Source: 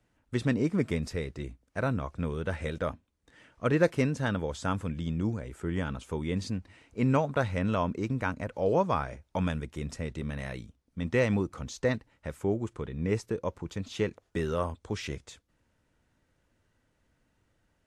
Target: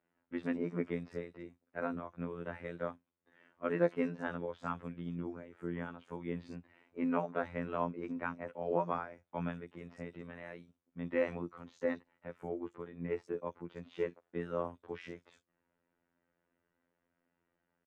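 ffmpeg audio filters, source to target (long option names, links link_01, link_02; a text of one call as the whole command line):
ffmpeg -i in.wav -filter_complex "[0:a]afftfilt=real='hypot(re,im)*cos(PI*b)':imag='0':win_size=2048:overlap=0.75,acrossover=split=160 2800:gain=0.112 1 0.112[link_01][link_02][link_03];[link_01][link_02][link_03]amix=inputs=3:normalize=0,acrossover=split=4600[link_04][link_05];[link_05]adelay=50[link_06];[link_04][link_06]amix=inputs=2:normalize=0,volume=-3dB" out.wav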